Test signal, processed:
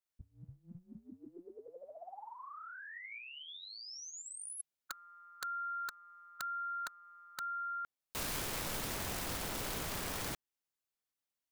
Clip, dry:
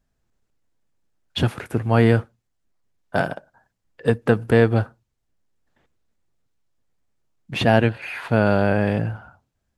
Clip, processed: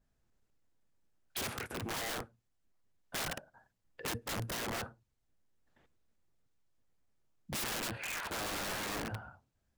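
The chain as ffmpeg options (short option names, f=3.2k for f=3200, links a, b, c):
-af "afftfilt=real='re*lt(hypot(re,im),0.355)':imag='im*lt(hypot(re,im),0.355)':win_size=1024:overlap=0.75,aeval=exprs='(mod(21.1*val(0)+1,2)-1)/21.1':c=same,adynamicequalizer=threshold=0.00501:dfrequency=1900:dqfactor=0.7:tfrequency=1900:tqfactor=0.7:attack=5:release=100:ratio=0.375:range=2:mode=cutabove:tftype=highshelf,volume=-4.5dB"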